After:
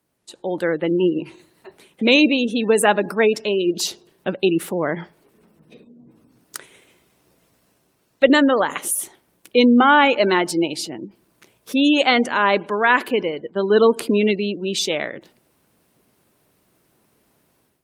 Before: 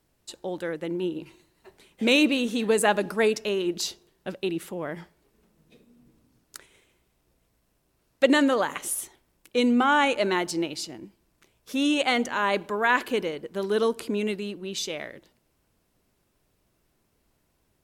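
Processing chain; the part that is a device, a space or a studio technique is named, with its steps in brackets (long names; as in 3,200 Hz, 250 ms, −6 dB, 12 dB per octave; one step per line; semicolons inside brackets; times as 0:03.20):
0:13.23–0:14.34: downward expander −35 dBFS
noise-suppressed video call (high-pass filter 130 Hz 12 dB per octave; gate on every frequency bin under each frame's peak −30 dB strong; automatic gain control gain up to 11 dB; Opus 32 kbit/s 48,000 Hz)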